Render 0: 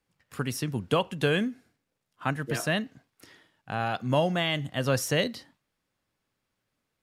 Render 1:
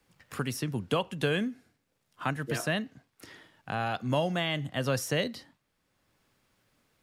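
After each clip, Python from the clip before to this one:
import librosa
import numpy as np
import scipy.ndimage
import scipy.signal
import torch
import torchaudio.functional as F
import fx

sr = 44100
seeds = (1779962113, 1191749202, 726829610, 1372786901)

y = fx.band_squash(x, sr, depth_pct=40)
y = y * 10.0 ** (-2.5 / 20.0)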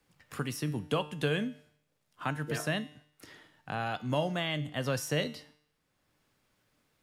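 y = fx.comb_fb(x, sr, f0_hz=150.0, decay_s=0.67, harmonics='all', damping=0.0, mix_pct=60)
y = y * 10.0 ** (4.5 / 20.0)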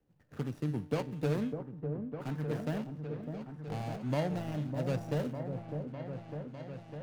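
y = scipy.ndimage.median_filter(x, 41, mode='constant')
y = fx.echo_opening(y, sr, ms=603, hz=750, octaves=1, feedback_pct=70, wet_db=-6)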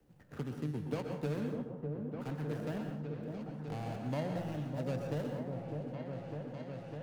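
y = fx.rev_plate(x, sr, seeds[0], rt60_s=0.53, hf_ratio=0.55, predelay_ms=105, drr_db=5.0)
y = fx.band_squash(y, sr, depth_pct=40)
y = y * 10.0 ** (-4.0 / 20.0)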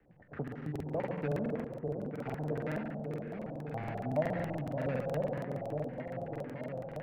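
y = fx.filter_lfo_lowpass(x, sr, shape='square', hz=9.0, low_hz=680.0, high_hz=2000.0, q=3.3)
y = fx.buffer_crackle(y, sr, first_s=0.43, period_s=0.14, block=2048, kind='repeat')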